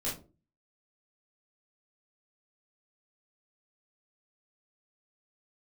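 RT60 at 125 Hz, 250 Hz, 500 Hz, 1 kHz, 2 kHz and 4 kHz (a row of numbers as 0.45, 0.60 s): 0.55, 0.50, 0.45, 0.30, 0.20, 0.20 s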